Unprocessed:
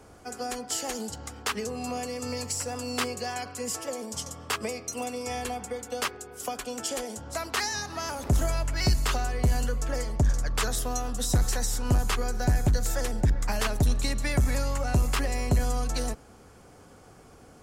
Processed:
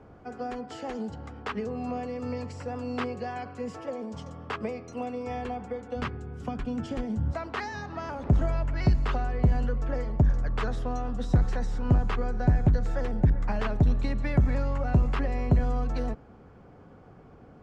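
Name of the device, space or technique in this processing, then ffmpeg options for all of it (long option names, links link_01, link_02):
phone in a pocket: -filter_complex "[0:a]lowpass=3200,equalizer=frequency=160:width_type=o:width=1.2:gain=4.5,highshelf=frequency=2200:gain=-10,asplit=3[link_01][link_02][link_03];[link_01]afade=type=out:start_time=5.95:duration=0.02[link_04];[link_02]asubboost=boost=7:cutoff=190,afade=type=in:start_time=5.95:duration=0.02,afade=type=out:start_time=7.31:duration=0.02[link_05];[link_03]afade=type=in:start_time=7.31:duration=0.02[link_06];[link_04][link_05][link_06]amix=inputs=3:normalize=0"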